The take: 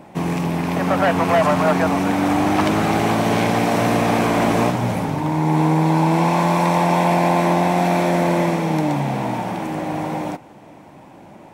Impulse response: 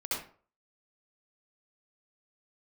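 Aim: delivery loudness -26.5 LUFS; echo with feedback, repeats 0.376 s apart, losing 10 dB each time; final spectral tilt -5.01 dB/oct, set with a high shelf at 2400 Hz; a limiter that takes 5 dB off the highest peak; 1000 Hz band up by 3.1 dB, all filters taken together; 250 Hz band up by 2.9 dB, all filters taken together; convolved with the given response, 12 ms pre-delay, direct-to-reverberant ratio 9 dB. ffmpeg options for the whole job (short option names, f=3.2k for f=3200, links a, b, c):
-filter_complex "[0:a]equalizer=f=250:t=o:g=4,equalizer=f=1k:t=o:g=4.5,highshelf=f=2.4k:g=-5,alimiter=limit=-9dB:level=0:latency=1,aecho=1:1:376|752|1128|1504:0.316|0.101|0.0324|0.0104,asplit=2[a][b];[1:a]atrim=start_sample=2205,adelay=12[c];[b][c]afir=irnorm=-1:irlink=0,volume=-14dB[d];[a][d]amix=inputs=2:normalize=0,volume=-9.5dB"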